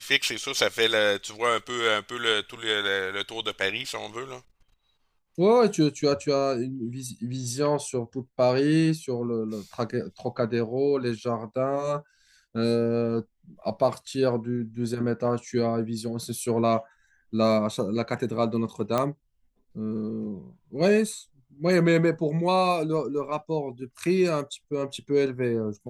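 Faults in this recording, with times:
18.98 s: pop -12 dBFS

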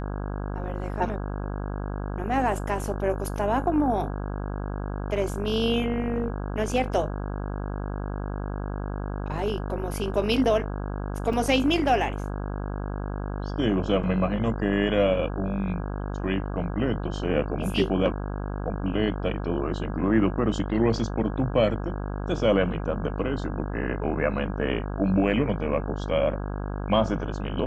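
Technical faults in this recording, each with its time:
buzz 50 Hz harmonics 33 -31 dBFS
11.33 s: dropout 3.9 ms

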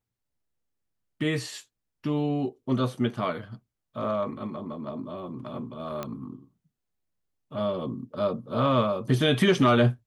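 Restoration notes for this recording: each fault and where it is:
6.03 s: pop -18 dBFS

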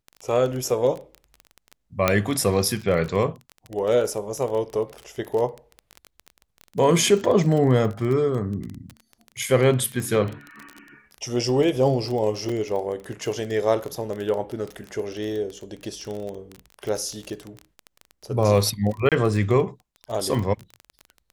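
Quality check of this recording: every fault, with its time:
crackle 22 per s -27 dBFS
2.08 s: pop -4 dBFS
12.49 s: dropout 4.2 ms
19.09–19.12 s: dropout 27 ms

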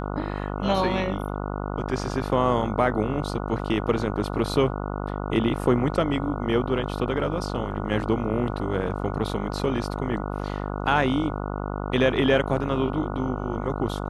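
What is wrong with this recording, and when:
buzz 50 Hz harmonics 29 -30 dBFS

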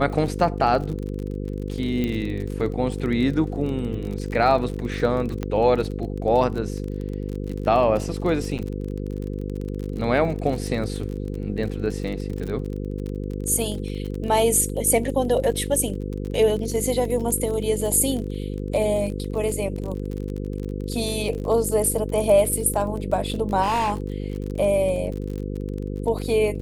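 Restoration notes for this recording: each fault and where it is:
buzz 50 Hz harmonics 10 -29 dBFS
crackle 34 per s -29 dBFS
2.04 s: pop -14 dBFS
5.43 s: pop -14 dBFS
8.58–8.59 s: dropout 8.3 ms
23.62–23.94 s: clipped -18.5 dBFS

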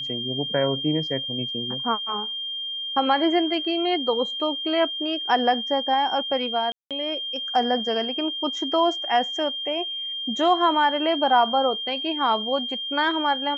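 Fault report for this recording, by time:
whine 3.2 kHz -28 dBFS
6.72–6.91 s: dropout 187 ms

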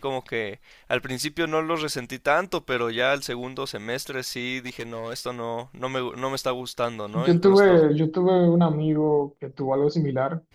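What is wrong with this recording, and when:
4.66–5.21 s: clipped -27.5 dBFS

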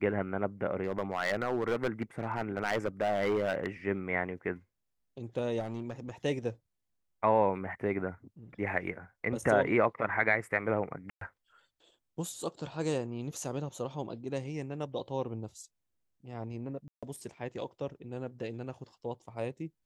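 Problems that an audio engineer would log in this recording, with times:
0.83–3.67 s: clipped -25 dBFS
5.59–6.11 s: clipped -32 dBFS
11.10–11.21 s: dropout 113 ms
16.88–17.03 s: dropout 146 ms

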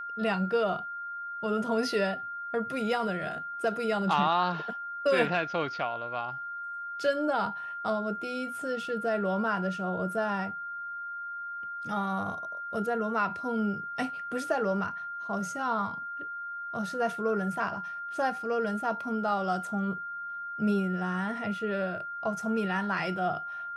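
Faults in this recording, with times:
whine 1.4 kHz -35 dBFS

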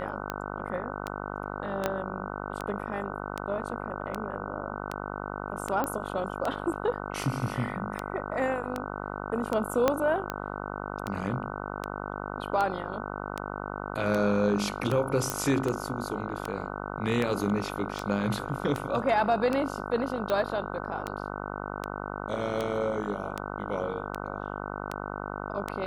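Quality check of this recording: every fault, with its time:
buzz 50 Hz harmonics 30 -36 dBFS
tick 78 rpm -16 dBFS
1.86 s: pop -13 dBFS
5.84 s: pop -16 dBFS
9.88 s: pop -9 dBFS
15.30 s: pop -12 dBFS

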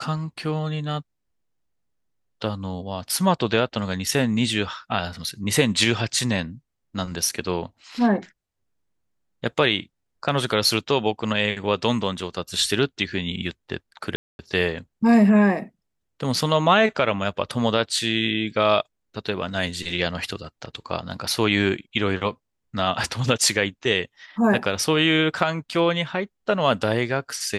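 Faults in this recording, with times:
14.16–14.39 s: dropout 231 ms

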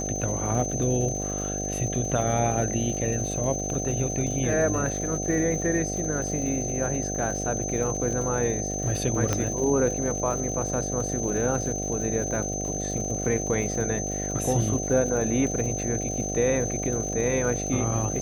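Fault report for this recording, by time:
buzz 50 Hz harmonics 15 -32 dBFS
crackle 180 per s -35 dBFS
whine 6.2 kHz -31 dBFS
4.27 s: dropout 2.6 ms
9.33 s: pop -10 dBFS

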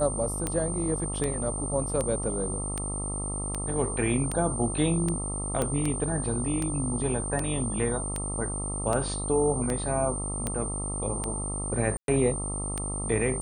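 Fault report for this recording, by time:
buzz 50 Hz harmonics 26 -34 dBFS
tick 78 rpm -15 dBFS
whine 8.9 kHz -33 dBFS
5.62 s: pop -14 dBFS
11.97–12.08 s: dropout 112 ms

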